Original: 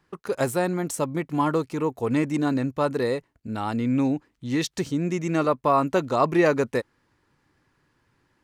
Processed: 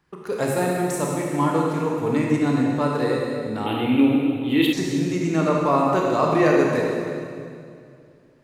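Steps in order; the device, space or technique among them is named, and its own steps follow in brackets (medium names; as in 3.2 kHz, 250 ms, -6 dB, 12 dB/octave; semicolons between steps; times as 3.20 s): stairwell (reverberation RT60 2.4 s, pre-delay 22 ms, DRR -2 dB); 3.66–4.73 s: FFT filter 110 Hz 0 dB, 200 Hz -7 dB, 310 Hz +7 dB, 600 Hz 0 dB, 1.7 kHz -1 dB, 3.2 kHz +15 dB, 5.7 kHz -24 dB, 12 kHz +12 dB; trim -1.5 dB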